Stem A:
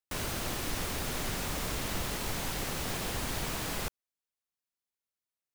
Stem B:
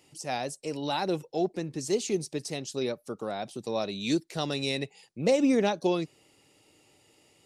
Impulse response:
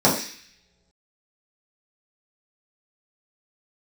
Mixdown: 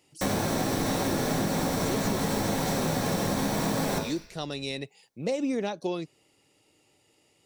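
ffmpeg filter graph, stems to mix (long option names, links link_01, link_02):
-filter_complex "[0:a]adelay=100,volume=2.5dB,asplit=2[link_01][link_02];[link_02]volume=-12dB[link_03];[1:a]volume=-3.5dB[link_04];[2:a]atrim=start_sample=2205[link_05];[link_03][link_05]afir=irnorm=-1:irlink=0[link_06];[link_01][link_04][link_06]amix=inputs=3:normalize=0,acompressor=threshold=-24dB:ratio=6"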